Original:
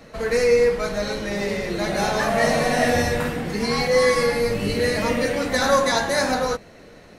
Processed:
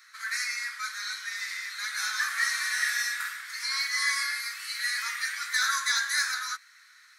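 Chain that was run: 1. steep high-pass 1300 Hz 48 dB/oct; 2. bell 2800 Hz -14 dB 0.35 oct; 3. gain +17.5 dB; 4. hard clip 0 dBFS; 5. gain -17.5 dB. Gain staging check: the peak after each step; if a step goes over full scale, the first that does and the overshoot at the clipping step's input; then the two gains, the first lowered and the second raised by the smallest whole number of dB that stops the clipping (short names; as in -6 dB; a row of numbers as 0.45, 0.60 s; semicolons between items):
-12.0, -13.5, +4.0, 0.0, -17.5 dBFS; step 3, 4.0 dB; step 3 +13.5 dB, step 5 -13.5 dB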